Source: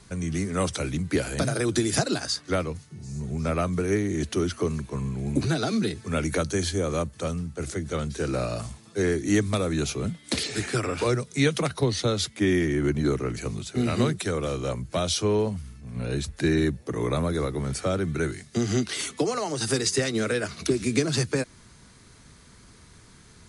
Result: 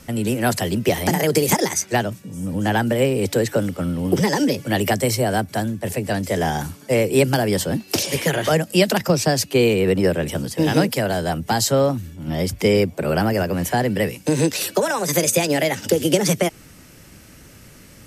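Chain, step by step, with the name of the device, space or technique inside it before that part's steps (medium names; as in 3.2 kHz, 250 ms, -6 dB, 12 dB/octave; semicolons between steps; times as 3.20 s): nightcore (tape speed +30%); trim +6.5 dB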